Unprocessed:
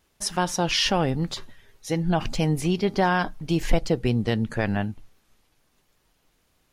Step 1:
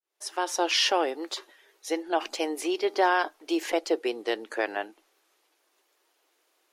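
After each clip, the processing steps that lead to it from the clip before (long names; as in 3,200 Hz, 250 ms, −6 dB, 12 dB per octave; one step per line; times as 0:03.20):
fade in at the beginning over 0.61 s
elliptic high-pass filter 330 Hz, stop band 50 dB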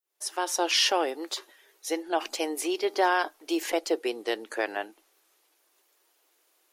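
high-shelf EQ 8,300 Hz +10.5 dB
level −1 dB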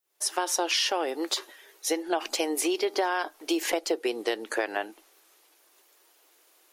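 downward compressor 6 to 1, threshold −30 dBFS, peak gain reduction 11.5 dB
level +6.5 dB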